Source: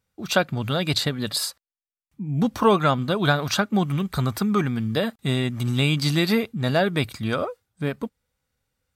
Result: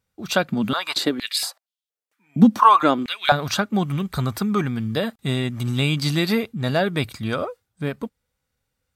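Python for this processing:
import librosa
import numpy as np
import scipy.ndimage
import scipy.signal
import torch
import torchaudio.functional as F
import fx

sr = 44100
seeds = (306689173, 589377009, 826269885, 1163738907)

y = fx.filter_held_highpass(x, sr, hz=4.3, low_hz=210.0, high_hz=3400.0, at=(0.5, 3.32))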